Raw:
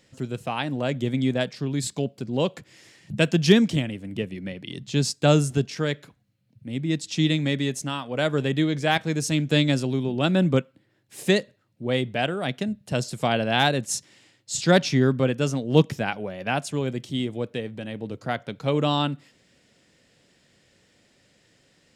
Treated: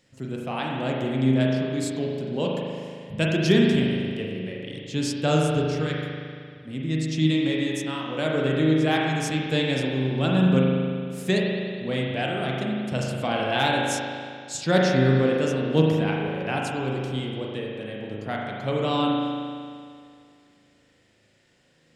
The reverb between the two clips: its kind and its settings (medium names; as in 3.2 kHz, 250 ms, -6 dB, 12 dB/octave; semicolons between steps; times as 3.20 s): spring tank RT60 2.2 s, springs 38 ms, chirp 65 ms, DRR -2.5 dB; trim -4.5 dB